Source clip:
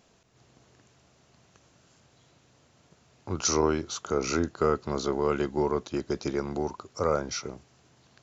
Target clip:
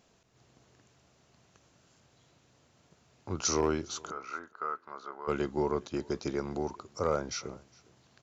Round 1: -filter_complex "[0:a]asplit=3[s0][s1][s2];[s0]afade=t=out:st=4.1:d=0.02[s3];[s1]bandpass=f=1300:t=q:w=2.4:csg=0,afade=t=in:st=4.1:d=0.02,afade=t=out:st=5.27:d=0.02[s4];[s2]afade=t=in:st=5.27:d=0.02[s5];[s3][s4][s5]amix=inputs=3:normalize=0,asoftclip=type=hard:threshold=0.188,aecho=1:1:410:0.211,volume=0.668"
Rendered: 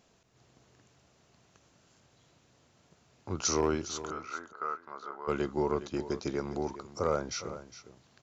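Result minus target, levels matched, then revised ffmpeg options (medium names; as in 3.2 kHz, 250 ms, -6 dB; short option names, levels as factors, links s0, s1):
echo-to-direct +11.5 dB
-filter_complex "[0:a]asplit=3[s0][s1][s2];[s0]afade=t=out:st=4.1:d=0.02[s3];[s1]bandpass=f=1300:t=q:w=2.4:csg=0,afade=t=in:st=4.1:d=0.02,afade=t=out:st=5.27:d=0.02[s4];[s2]afade=t=in:st=5.27:d=0.02[s5];[s3][s4][s5]amix=inputs=3:normalize=0,asoftclip=type=hard:threshold=0.188,aecho=1:1:410:0.0562,volume=0.668"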